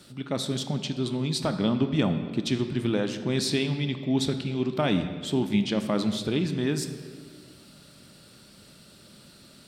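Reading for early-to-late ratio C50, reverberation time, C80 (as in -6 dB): 9.0 dB, 1.6 s, 10.0 dB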